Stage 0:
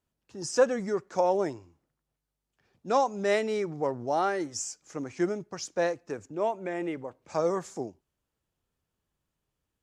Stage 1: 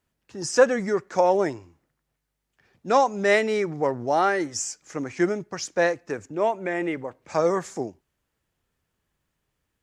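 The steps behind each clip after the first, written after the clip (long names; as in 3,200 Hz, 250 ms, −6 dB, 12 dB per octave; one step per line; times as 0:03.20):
parametric band 1,900 Hz +5.5 dB 0.8 octaves
level +5 dB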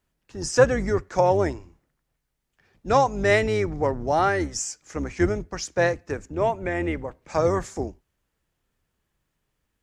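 sub-octave generator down 2 octaves, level −1 dB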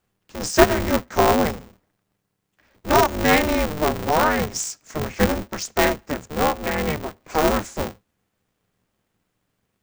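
ring modulator with a square carrier 150 Hz
level +2.5 dB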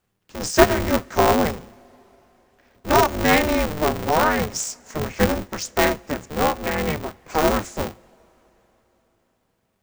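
coupled-rooms reverb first 0.24 s, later 4.4 s, from −22 dB, DRR 17.5 dB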